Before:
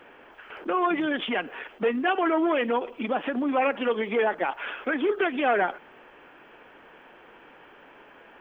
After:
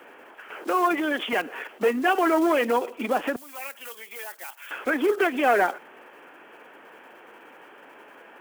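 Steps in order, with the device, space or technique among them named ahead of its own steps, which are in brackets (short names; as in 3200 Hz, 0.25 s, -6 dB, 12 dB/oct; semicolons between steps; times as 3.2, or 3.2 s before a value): early digital voice recorder (BPF 230–3400 Hz; block floating point 5-bit); 0.63–1.33 Bessel high-pass 260 Hz; 3.36–4.71 differentiator; gain +3 dB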